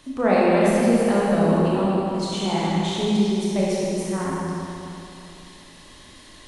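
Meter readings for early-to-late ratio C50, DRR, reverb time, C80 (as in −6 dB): −4.5 dB, −7.0 dB, 2.9 s, −2.0 dB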